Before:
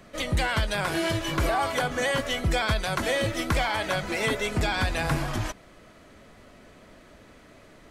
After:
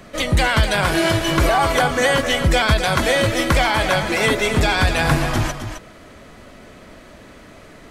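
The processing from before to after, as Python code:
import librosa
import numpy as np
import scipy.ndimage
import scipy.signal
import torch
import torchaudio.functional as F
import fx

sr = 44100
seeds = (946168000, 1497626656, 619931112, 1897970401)

y = x + 10.0 ** (-8.5 / 20.0) * np.pad(x, (int(263 * sr / 1000.0), 0))[:len(x)]
y = y * librosa.db_to_amplitude(8.5)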